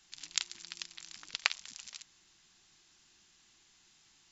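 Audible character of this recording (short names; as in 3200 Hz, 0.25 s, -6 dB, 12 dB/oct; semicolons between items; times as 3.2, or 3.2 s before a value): noise floor -67 dBFS; spectral tilt +3.0 dB/oct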